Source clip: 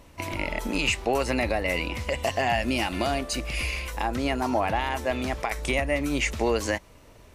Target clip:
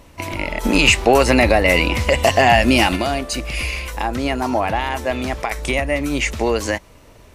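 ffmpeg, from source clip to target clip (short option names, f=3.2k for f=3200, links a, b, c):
-filter_complex "[0:a]asplit=3[a][b][c];[a]afade=t=out:st=0.63:d=0.02[d];[b]acontrast=72,afade=t=in:st=0.63:d=0.02,afade=t=out:st=2.95:d=0.02[e];[c]afade=t=in:st=2.95:d=0.02[f];[d][e][f]amix=inputs=3:normalize=0,volume=5.5dB"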